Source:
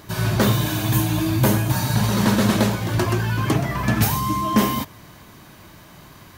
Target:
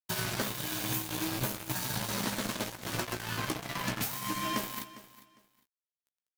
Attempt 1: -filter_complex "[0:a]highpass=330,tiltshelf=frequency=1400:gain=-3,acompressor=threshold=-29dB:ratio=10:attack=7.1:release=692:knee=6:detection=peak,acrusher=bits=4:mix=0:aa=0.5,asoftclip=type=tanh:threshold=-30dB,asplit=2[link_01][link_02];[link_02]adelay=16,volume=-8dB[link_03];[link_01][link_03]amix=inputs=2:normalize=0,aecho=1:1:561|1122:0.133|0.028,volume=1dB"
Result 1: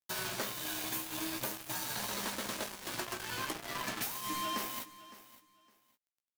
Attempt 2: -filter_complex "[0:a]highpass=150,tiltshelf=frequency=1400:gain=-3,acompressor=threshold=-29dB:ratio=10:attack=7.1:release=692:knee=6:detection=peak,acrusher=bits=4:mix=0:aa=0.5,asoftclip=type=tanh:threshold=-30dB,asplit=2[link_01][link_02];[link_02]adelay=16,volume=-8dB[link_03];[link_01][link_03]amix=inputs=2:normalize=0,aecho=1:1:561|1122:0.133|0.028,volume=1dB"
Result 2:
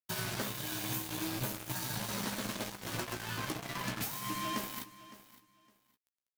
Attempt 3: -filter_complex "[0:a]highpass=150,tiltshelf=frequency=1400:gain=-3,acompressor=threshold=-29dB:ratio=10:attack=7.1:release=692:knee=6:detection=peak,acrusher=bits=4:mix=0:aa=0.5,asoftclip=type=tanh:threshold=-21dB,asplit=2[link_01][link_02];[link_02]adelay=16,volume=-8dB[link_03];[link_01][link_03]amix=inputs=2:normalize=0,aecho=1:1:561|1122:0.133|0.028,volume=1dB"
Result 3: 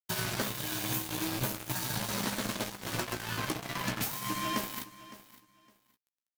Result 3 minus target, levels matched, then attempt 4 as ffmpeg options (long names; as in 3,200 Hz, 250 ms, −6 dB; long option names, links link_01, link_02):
echo 157 ms late
-filter_complex "[0:a]highpass=150,tiltshelf=frequency=1400:gain=-3,acompressor=threshold=-29dB:ratio=10:attack=7.1:release=692:knee=6:detection=peak,acrusher=bits=4:mix=0:aa=0.5,asoftclip=type=tanh:threshold=-21dB,asplit=2[link_01][link_02];[link_02]adelay=16,volume=-8dB[link_03];[link_01][link_03]amix=inputs=2:normalize=0,aecho=1:1:404|808:0.133|0.028,volume=1dB"